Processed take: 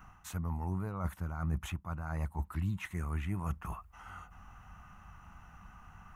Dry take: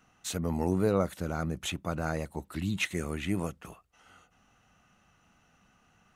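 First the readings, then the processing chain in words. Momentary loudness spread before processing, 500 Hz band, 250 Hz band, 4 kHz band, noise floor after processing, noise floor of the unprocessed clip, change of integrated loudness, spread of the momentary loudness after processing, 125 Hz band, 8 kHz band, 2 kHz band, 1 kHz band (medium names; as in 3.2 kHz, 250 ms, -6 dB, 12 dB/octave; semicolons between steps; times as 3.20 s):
10 LU, -16.5 dB, -8.5 dB, -14.0 dB, -58 dBFS, -67 dBFS, -6.0 dB, 19 LU, -0.5 dB, -12.0 dB, -8.5 dB, -4.5 dB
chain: ten-band graphic EQ 125 Hz -8 dB, 250 Hz -8 dB, 500 Hz -10 dB, 1 kHz +11 dB, 4 kHz -11 dB, 8 kHz -7 dB; reverse; compression 5:1, threshold -49 dBFS, peak gain reduction 21 dB; reverse; tone controls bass +15 dB, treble +2 dB; trim +6.5 dB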